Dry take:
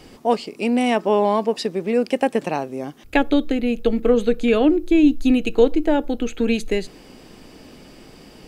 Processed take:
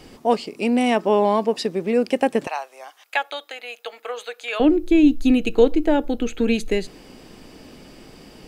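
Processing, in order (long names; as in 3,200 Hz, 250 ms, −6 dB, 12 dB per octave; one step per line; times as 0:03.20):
0:02.47–0:04.60: high-pass filter 730 Hz 24 dB per octave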